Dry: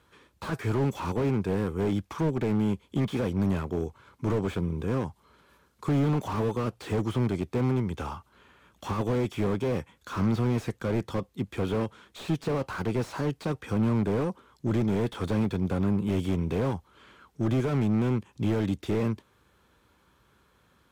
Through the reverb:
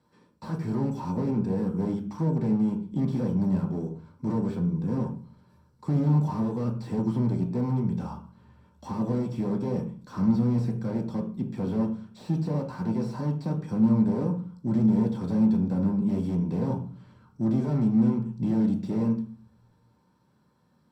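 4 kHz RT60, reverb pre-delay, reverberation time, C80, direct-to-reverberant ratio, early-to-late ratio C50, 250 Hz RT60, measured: 0.40 s, 3 ms, 0.40 s, 13.5 dB, 0.5 dB, 9.5 dB, 0.70 s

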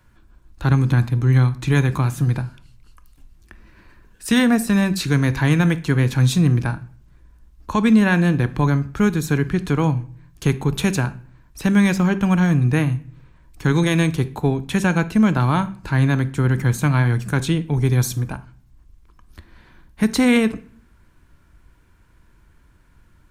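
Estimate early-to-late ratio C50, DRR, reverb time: 17.0 dB, 11.5 dB, 0.50 s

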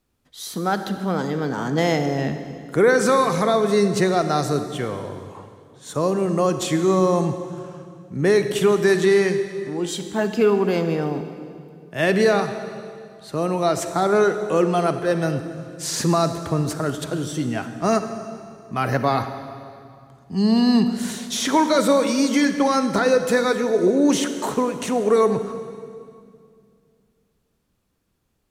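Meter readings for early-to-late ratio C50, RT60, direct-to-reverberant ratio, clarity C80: 9.0 dB, 2.3 s, 8.5 dB, 10.0 dB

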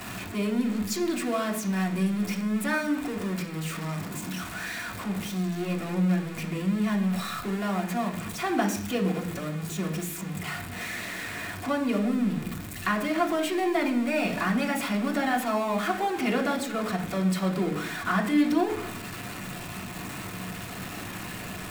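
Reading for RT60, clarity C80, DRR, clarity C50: 0.70 s, 13.0 dB, -0.5 dB, 10.5 dB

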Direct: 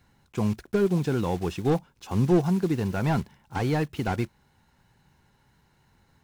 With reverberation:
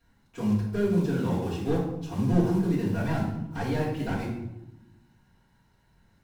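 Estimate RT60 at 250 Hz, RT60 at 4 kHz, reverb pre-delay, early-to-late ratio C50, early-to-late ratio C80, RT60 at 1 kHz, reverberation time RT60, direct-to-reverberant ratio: 1.5 s, 0.60 s, 3 ms, 3.0 dB, 6.0 dB, 0.85 s, 0.90 s, -9.5 dB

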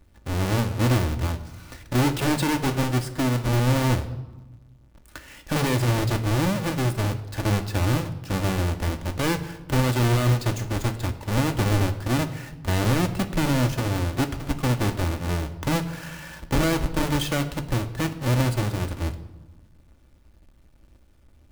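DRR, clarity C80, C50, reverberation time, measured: 6.0 dB, 15.0 dB, 13.0 dB, 1.1 s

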